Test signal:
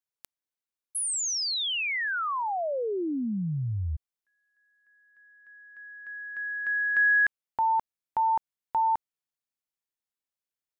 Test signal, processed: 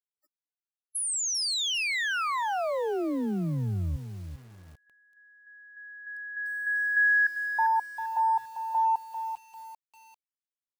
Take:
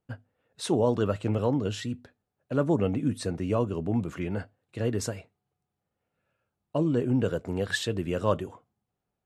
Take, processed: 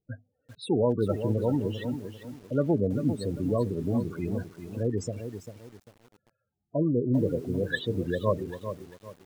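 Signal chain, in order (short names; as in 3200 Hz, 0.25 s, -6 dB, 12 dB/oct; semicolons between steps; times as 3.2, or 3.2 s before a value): loudest bins only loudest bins 16; lo-fi delay 0.396 s, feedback 35%, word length 8-bit, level -9 dB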